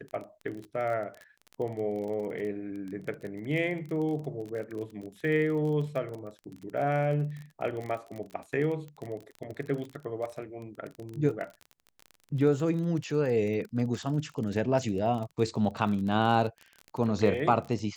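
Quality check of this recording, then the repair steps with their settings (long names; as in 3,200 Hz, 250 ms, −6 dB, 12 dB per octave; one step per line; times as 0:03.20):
surface crackle 29 per second −35 dBFS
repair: click removal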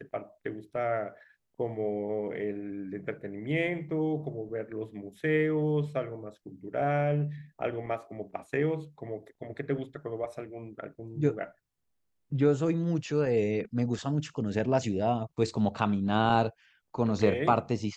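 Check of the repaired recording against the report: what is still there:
none of them is left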